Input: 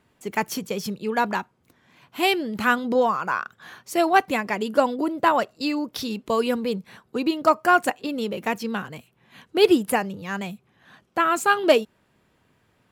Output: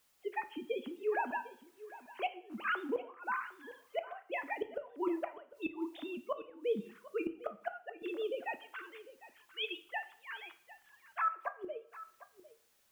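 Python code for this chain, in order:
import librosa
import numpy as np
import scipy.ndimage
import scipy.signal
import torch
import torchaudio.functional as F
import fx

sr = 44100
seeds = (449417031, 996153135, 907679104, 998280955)

y = fx.sine_speech(x, sr)
y = fx.highpass(y, sr, hz=910.0, slope=24, at=(8.54, 11.31), fade=0.02)
y = fx.dmg_noise_colour(y, sr, seeds[0], colour='white', level_db=-66.0)
y = fx.gate_flip(y, sr, shuts_db=-17.0, range_db=-24)
y = y + 10.0 ** (-17.0 / 20.0) * np.pad(y, (int(752 * sr / 1000.0), 0))[:len(y)]
y = fx.rev_double_slope(y, sr, seeds[1], early_s=0.51, late_s=1.6, knee_db=-24, drr_db=9.0)
y = y * librosa.db_to_amplitude(-7.0)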